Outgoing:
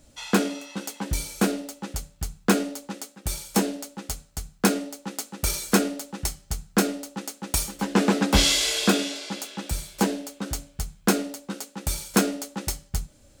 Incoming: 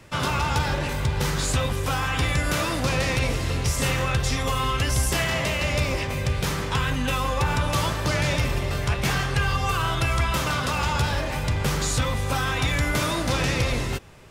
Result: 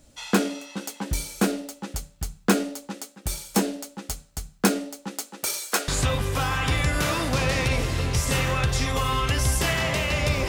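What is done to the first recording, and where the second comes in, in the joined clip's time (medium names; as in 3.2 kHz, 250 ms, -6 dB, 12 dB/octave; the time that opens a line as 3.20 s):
outgoing
5.18–5.88 s: high-pass 190 Hz -> 850 Hz
5.88 s: go over to incoming from 1.39 s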